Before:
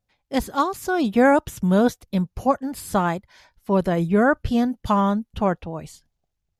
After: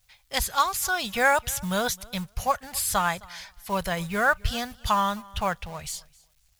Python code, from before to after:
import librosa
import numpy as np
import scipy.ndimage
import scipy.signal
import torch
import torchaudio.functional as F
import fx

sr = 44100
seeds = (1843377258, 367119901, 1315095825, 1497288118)

p1 = fx.law_mismatch(x, sr, coded='mu')
p2 = fx.tone_stack(p1, sr, knobs='10-0-10')
p3 = p2 + fx.echo_feedback(p2, sr, ms=263, feedback_pct=17, wet_db=-24, dry=0)
y = p3 * librosa.db_to_amplitude(8.0)